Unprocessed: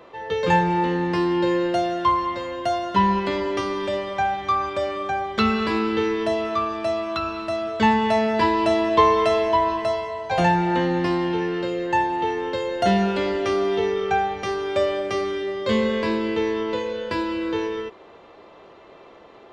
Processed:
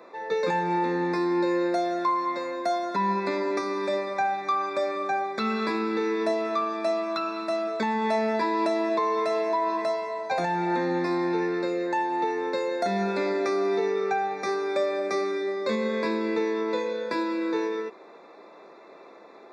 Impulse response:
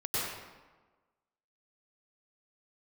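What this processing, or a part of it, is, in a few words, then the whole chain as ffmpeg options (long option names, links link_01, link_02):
PA system with an anti-feedback notch: -af "highpass=frequency=200:width=0.5412,highpass=frequency=200:width=1.3066,asuperstop=centerf=3000:order=20:qfactor=4.1,alimiter=limit=-15.5dB:level=0:latency=1:release=246,volume=-1.5dB"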